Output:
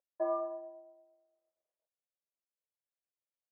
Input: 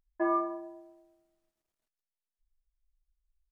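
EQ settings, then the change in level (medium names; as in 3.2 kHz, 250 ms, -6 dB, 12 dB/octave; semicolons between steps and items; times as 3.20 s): resonant high-pass 550 Hz, resonance Q 4.7; low-pass 1 kHz 12 dB/octave; -8.0 dB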